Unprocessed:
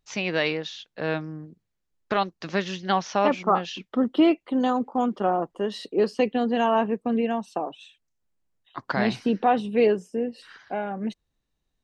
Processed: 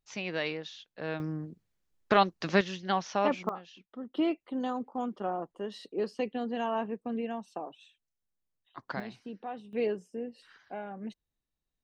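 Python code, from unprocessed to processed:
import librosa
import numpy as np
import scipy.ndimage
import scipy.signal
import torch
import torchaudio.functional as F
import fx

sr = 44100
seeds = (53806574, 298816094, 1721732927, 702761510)

y = fx.gain(x, sr, db=fx.steps((0.0, -8.5), (1.2, 1.0), (2.61, -6.0), (3.49, -18.5), (4.14, -10.0), (9.0, -19.0), (9.73, -10.5)))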